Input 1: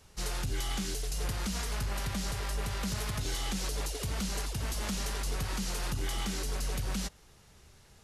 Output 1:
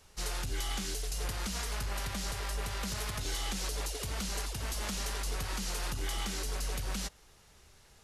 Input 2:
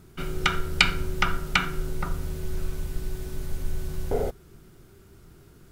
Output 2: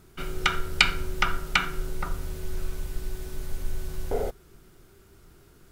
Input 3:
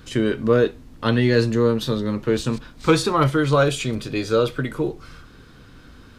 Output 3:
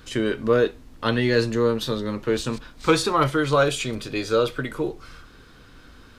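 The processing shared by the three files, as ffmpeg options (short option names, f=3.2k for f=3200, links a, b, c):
-af "equalizer=f=140:w=0.55:g=-6"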